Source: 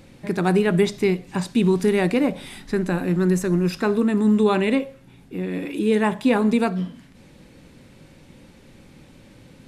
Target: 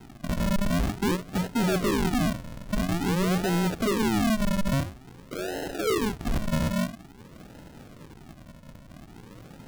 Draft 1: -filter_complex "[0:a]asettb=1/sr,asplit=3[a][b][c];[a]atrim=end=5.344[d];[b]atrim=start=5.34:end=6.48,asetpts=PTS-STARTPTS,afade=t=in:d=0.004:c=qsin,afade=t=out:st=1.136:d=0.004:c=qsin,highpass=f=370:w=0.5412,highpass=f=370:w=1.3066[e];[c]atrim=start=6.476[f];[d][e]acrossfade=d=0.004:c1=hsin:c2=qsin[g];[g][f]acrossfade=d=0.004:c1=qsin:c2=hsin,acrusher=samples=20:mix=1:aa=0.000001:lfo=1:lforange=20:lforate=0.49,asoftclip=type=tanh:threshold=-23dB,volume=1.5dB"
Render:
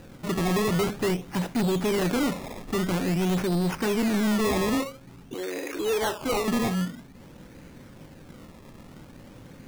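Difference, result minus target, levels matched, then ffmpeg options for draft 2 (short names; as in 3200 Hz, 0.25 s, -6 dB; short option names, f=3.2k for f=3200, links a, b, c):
decimation with a swept rate: distortion -17 dB
-filter_complex "[0:a]asettb=1/sr,asplit=3[a][b][c];[a]atrim=end=5.344[d];[b]atrim=start=5.34:end=6.48,asetpts=PTS-STARTPTS,afade=t=in:d=0.004:c=qsin,afade=t=out:st=1.136:d=0.004:c=qsin,highpass=f=370:w=0.5412,highpass=f=370:w=1.3066[e];[c]atrim=start=6.476[f];[d][e]acrossfade=d=0.004:c1=hsin:c2=qsin[g];[g][f]acrossfade=d=0.004:c1=qsin:c2=hsin,acrusher=samples=75:mix=1:aa=0.000001:lfo=1:lforange=75:lforate=0.49,asoftclip=type=tanh:threshold=-23dB,volume=1.5dB"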